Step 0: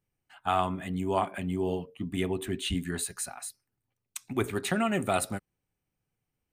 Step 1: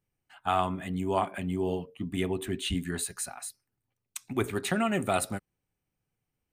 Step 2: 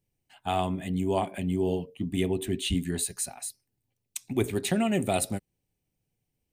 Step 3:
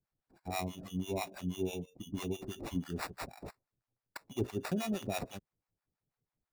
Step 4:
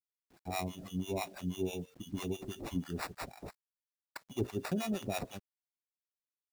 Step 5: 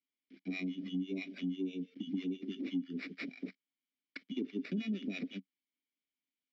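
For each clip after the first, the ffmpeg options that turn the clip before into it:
-af anull
-af "equalizer=f=1300:w=1.5:g=-13.5,volume=1.5"
-filter_complex "[0:a]acrusher=samples=14:mix=1:aa=0.000001,acrossover=split=630[s0][s1];[s0]aeval=exprs='val(0)*(1-1/2+1/2*cos(2*PI*6.1*n/s))':c=same[s2];[s1]aeval=exprs='val(0)*(1-1/2-1/2*cos(2*PI*6.1*n/s))':c=same[s3];[s2][s3]amix=inputs=2:normalize=0,volume=0.562"
-af "acrusher=bits=10:mix=0:aa=0.000001"
-filter_complex "[0:a]asplit=3[s0][s1][s2];[s0]bandpass=f=270:t=q:w=8,volume=1[s3];[s1]bandpass=f=2290:t=q:w=8,volume=0.501[s4];[s2]bandpass=f=3010:t=q:w=8,volume=0.355[s5];[s3][s4][s5]amix=inputs=3:normalize=0,acompressor=threshold=0.00178:ratio=3,highpass=f=170:w=0.5412,highpass=f=170:w=1.3066,equalizer=f=190:t=q:w=4:g=7,equalizer=f=440:t=q:w=4:g=4,equalizer=f=5200:t=q:w=4:g=6,lowpass=f=5400:w=0.5412,lowpass=f=5400:w=1.3066,volume=6.68"

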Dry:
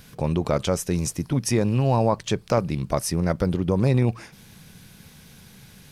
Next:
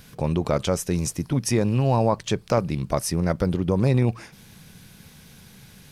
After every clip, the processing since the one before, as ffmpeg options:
-af anull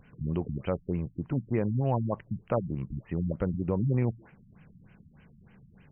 -af "afftfilt=real='re*lt(b*sr/1024,250*pow(3200/250,0.5+0.5*sin(2*PI*3.3*pts/sr)))':imag='im*lt(b*sr/1024,250*pow(3200/250,0.5+0.5*sin(2*PI*3.3*pts/sr)))':win_size=1024:overlap=0.75,volume=0.473"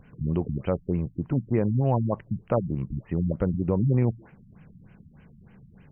-af "tiltshelf=f=1500:g=3,volume=1.19"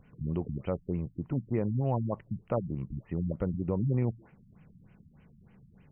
-af "bandreject=f=1600:w=13,volume=0.501"

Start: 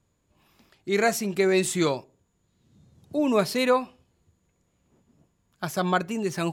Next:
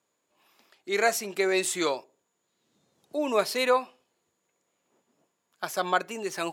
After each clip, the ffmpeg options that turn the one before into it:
-af "highpass=430"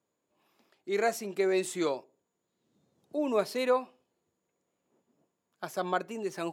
-af "tiltshelf=f=690:g=5.5,volume=0.631"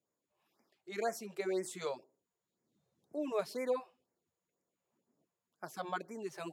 -af "afftfilt=real='re*(1-between(b*sr/1024,230*pow(3500/230,0.5+0.5*sin(2*PI*2*pts/sr))/1.41,230*pow(3500/230,0.5+0.5*sin(2*PI*2*pts/sr))*1.41))':imag='im*(1-between(b*sr/1024,230*pow(3500/230,0.5+0.5*sin(2*PI*2*pts/sr))/1.41,230*pow(3500/230,0.5+0.5*sin(2*PI*2*pts/sr))*1.41))':win_size=1024:overlap=0.75,volume=0.447"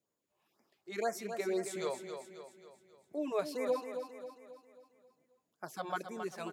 -af "aecho=1:1:269|538|807|1076|1345|1614:0.398|0.191|0.0917|0.044|0.0211|0.0101,volume=1.12"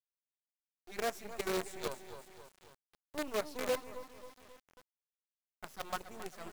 -af "acrusher=bits=6:dc=4:mix=0:aa=0.000001,volume=0.794"

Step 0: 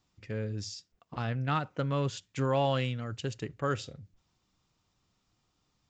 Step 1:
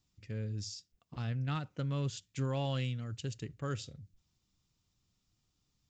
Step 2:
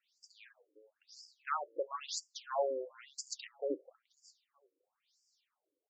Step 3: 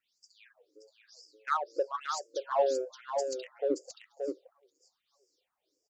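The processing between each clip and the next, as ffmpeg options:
-af "equalizer=f=880:w=0.35:g=-11.5"
-af "aecho=1:1:460|920:0.0891|0.0223,flanger=delay=3:depth=7.9:regen=51:speed=0.53:shape=triangular,afftfilt=real='re*between(b*sr/1024,410*pow(6700/410,0.5+0.5*sin(2*PI*1*pts/sr))/1.41,410*pow(6700/410,0.5+0.5*sin(2*PI*1*pts/sr))*1.41)':imag='im*between(b*sr/1024,410*pow(6700/410,0.5+0.5*sin(2*PI*1*pts/sr))/1.41,410*pow(6700/410,0.5+0.5*sin(2*PI*1*pts/sr))*1.41)':win_size=1024:overlap=0.75,volume=4.22"
-filter_complex "[0:a]asplit=2[s0][s1];[s1]adynamicsmooth=sensitivity=6:basefreq=970,volume=1.19[s2];[s0][s2]amix=inputs=2:normalize=0,aecho=1:1:576:0.531"

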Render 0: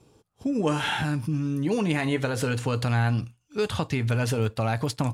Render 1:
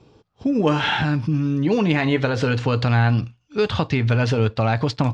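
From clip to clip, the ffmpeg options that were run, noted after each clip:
-af "lowpass=f=5200:w=0.5412,lowpass=f=5200:w=1.3066,volume=2"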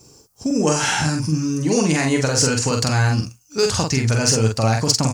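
-filter_complex "[0:a]aexciter=amount=13.5:drive=9.5:freq=5600,asplit=2[s0][s1];[s1]adelay=45,volume=0.668[s2];[s0][s2]amix=inputs=2:normalize=0,volume=0.891"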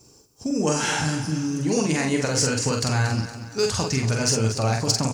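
-filter_complex "[0:a]flanger=delay=3:depth=8.5:regen=-83:speed=0.69:shape=sinusoidal,asplit=2[s0][s1];[s1]aecho=0:1:233|466|699|932:0.251|0.111|0.0486|0.0214[s2];[s0][s2]amix=inputs=2:normalize=0"

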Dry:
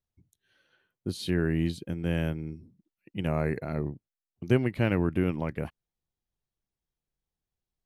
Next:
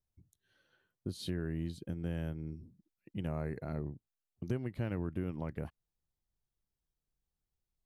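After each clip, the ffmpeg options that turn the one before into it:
-af "lowshelf=f=110:g=7,acompressor=threshold=0.0224:ratio=2.5,equalizer=f=2400:w=2.1:g=-5.5,volume=0.668"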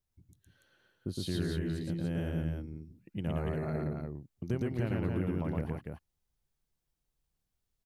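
-af "aecho=1:1:113.7|288.6:0.891|0.631,volume=1.19"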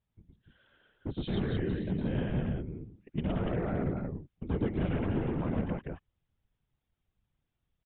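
-af "volume=26.6,asoftclip=hard,volume=0.0376,afftfilt=real='hypot(re,im)*cos(2*PI*random(0))':imag='hypot(re,im)*sin(2*PI*random(1))':win_size=512:overlap=0.75,aresample=8000,aresample=44100,volume=2.82"

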